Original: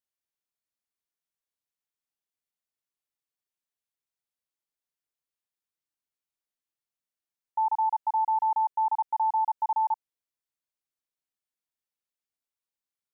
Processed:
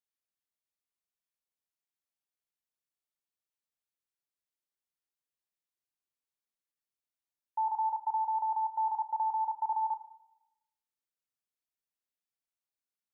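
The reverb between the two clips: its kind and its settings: Schroeder reverb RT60 0.91 s, combs from 26 ms, DRR 11.5 dB; trim -5 dB

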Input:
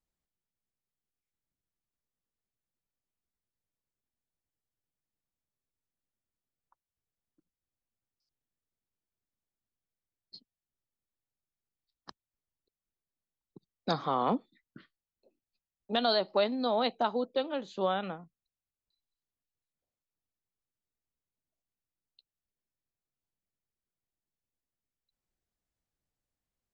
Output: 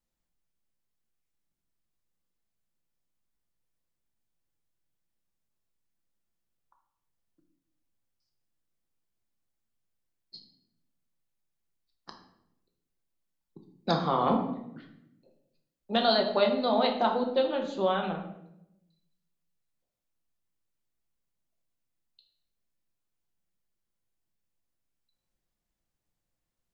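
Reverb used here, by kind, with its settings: simulated room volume 230 m³, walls mixed, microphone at 0.83 m; trim +1.5 dB

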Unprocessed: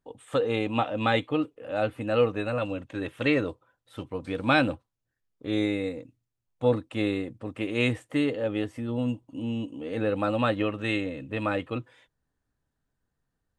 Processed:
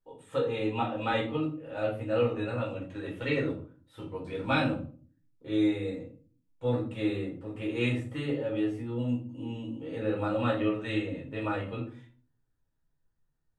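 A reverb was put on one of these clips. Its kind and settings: simulated room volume 280 m³, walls furnished, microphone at 4.5 m; trim -12.5 dB

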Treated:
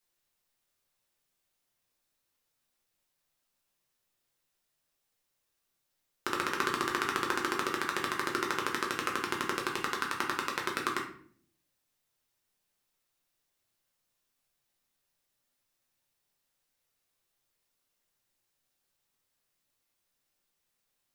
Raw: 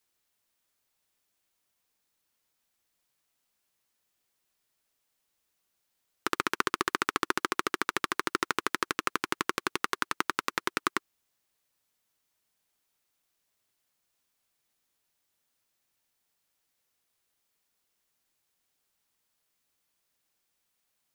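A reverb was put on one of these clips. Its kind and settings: simulated room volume 65 m³, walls mixed, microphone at 0.84 m; trim -5 dB

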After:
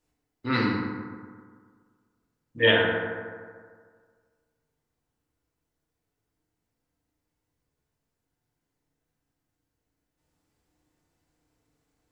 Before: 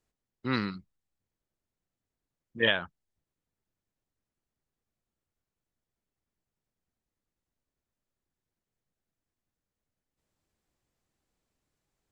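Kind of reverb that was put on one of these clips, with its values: FDN reverb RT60 1.8 s, low-frequency decay 0.95×, high-frequency decay 0.4×, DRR -5 dB; trim +1 dB

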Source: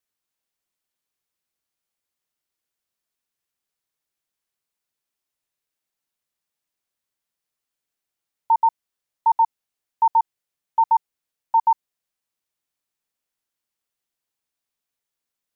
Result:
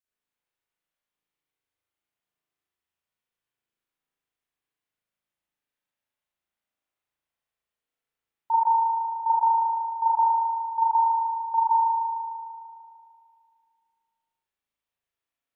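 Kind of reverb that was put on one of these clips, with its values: spring tank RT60 2.3 s, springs 37 ms, chirp 75 ms, DRR -8.5 dB; trim -9.5 dB

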